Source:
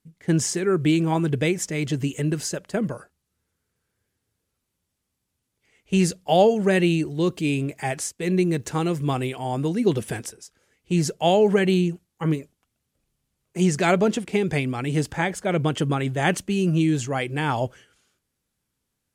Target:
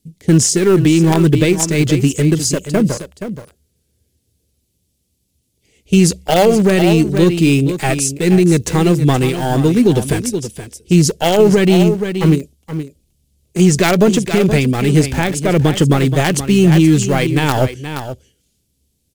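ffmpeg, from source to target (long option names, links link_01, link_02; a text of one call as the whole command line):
ffmpeg -i in.wav -filter_complex "[0:a]acrossover=split=610|2700[link_01][link_02][link_03];[link_01]equalizer=frequency=70:width=7.9:gain=14.5[link_04];[link_02]acrusher=bits=4:dc=4:mix=0:aa=0.000001[link_05];[link_04][link_05][link_03]amix=inputs=3:normalize=0,aecho=1:1:474:0.266,alimiter=level_in=13dB:limit=-1dB:release=50:level=0:latency=1,volume=-1dB" out.wav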